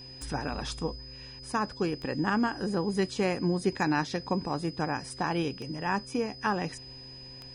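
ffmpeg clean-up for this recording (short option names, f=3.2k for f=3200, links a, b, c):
-af "adeclick=t=4,bandreject=f=129.9:t=h:w=4,bandreject=f=259.8:t=h:w=4,bandreject=f=389.7:t=h:w=4,bandreject=f=519.6:t=h:w=4,bandreject=f=5k:w=30"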